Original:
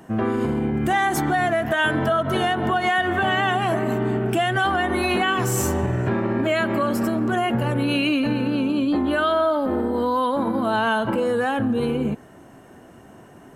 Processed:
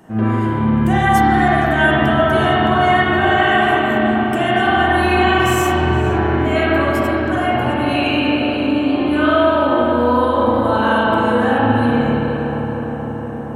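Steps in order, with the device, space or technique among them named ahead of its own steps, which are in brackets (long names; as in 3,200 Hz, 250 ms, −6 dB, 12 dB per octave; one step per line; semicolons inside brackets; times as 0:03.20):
0:07.85–0:08.97: high-pass filter 290 Hz 12 dB per octave
dub delay into a spring reverb (feedback echo with a low-pass in the loop 468 ms, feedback 74%, low-pass 2,000 Hz, level −8 dB; spring reverb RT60 2.6 s, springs 37/55 ms, chirp 25 ms, DRR −7.5 dB)
level −2 dB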